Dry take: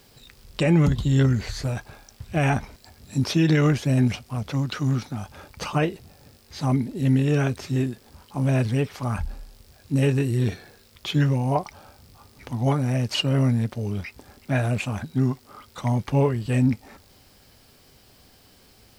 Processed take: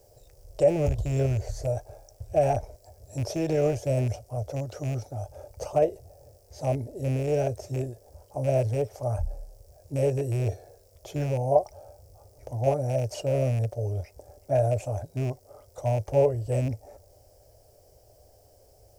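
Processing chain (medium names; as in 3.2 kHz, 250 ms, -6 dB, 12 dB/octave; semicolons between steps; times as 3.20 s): rattle on loud lows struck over -20 dBFS, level -16 dBFS; FFT filter 110 Hz 0 dB, 200 Hz -21 dB, 610 Hz +9 dB, 1.1 kHz -17 dB, 3.9 kHz -21 dB, 5.7 kHz -5 dB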